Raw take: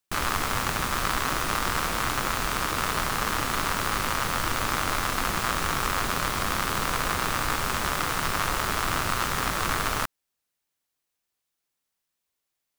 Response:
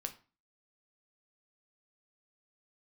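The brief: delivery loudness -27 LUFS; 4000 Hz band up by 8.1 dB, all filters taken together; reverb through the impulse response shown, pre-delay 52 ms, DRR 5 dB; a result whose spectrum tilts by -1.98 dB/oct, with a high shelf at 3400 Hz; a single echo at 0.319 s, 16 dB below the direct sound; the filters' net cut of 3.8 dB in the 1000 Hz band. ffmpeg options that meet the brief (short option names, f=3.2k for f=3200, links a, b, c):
-filter_complex "[0:a]equalizer=f=1k:t=o:g=-6,highshelf=f=3.4k:g=3.5,equalizer=f=4k:t=o:g=8,aecho=1:1:319:0.158,asplit=2[a][b];[1:a]atrim=start_sample=2205,adelay=52[c];[b][c]afir=irnorm=-1:irlink=0,volume=-3.5dB[d];[a][d]amix=inputs=2:normalize=0,volume=-4.5dB"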